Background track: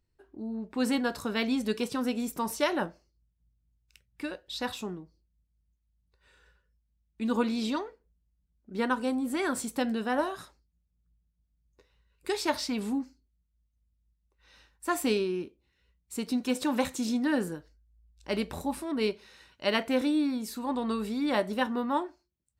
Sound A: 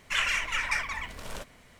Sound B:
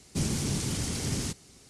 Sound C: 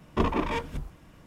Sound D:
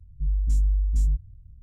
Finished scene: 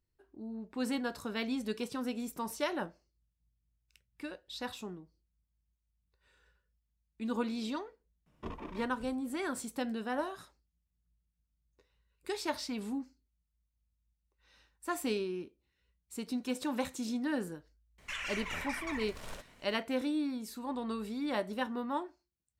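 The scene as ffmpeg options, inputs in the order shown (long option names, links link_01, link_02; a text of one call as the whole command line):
ffmpeg -i bed.wav -i cue0.wav -i cue1.wav -i cue2.wav -filter_complex "[0:a]volume=-6.5dB[link_01];[1:a]alimiter=level_in=0.5dB:limit=-24dB:level=0:latency=1:release=110,volume=-0.5dB[link_02];[3:a]atrim=end=1.26,asetpts=PTS-STARTPTS,volume=-17.5dB,afade=type=in:duration=0.004:curve=hsin,afade=type=out:start_time=1.256:duration=0.004:curve=hsin,adelay=364266S[link_03];[link_02]atrim=end=1.79,asetpts=PTS-STARTPTS,volume=-5.5dB,afade=type=in:duration=0.004:curve=hsin,afade=type=out:start_time=1.786:duration=0.004:curve=hsin,adelay=17980[link_04];[link_01][link_03][link_04]amix=inputs=3:normalize=0" out.wav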